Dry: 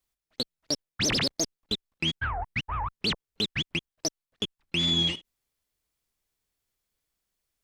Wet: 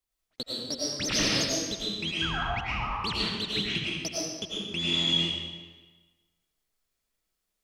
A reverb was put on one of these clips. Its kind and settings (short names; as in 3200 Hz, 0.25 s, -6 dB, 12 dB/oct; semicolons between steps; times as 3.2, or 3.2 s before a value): digital reverb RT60 1.3 s, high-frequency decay 0.9×, pre-delay 65 ms, DRR -6.5 dB; gain -6 dB